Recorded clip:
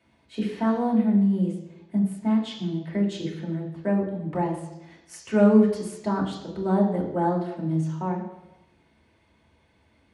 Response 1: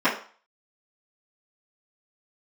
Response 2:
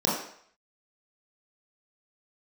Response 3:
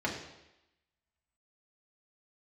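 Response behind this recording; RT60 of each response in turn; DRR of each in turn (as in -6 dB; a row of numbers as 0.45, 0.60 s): 3; 0.40, 0.60, 0.90 s; -15.5, -6.5, -3.0 dB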